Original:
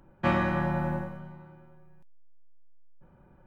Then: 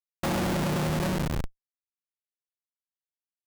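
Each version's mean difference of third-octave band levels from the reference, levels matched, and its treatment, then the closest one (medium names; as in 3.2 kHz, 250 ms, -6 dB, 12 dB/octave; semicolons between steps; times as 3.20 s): 11.5 dB: low-pass that closes with the level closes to 520 Hz, closed at -26.5 dBFS; dynamic bell 970 Hz, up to +5 dB, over -45 dBFS, Q 0.83; Schmitt trigger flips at -42 dBFS; trim +7.5 dB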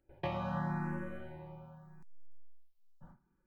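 5.5 dB: gate with hold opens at -46 dBFS; compression 6:1, threshold -36 dBFS, peak gain reduction 14.5 dB; barber-pole phaser +0.82 Hz; trim +4.5 dB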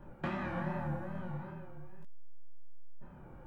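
7.5 dB: compression 6:1, threshold -41 dBFS, peak gain reduction 18.5 dB; wow and flutter 94 cents; detune thickener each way 51 cents; trim +9.5 dB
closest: second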